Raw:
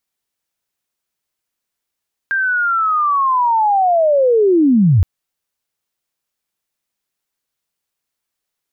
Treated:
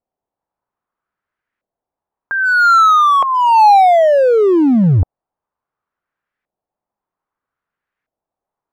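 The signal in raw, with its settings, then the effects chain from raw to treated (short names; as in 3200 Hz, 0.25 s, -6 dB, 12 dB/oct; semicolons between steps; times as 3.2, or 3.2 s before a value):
chirp linear 1600 Hz -> 79 Hz -14 dBFS -> -7.5 dBFS 2.72 s
LFO low-pass saw up 0.62 Hz 650–1900 Hz; in parallel at -10 dB: wavefolder -14 dBFS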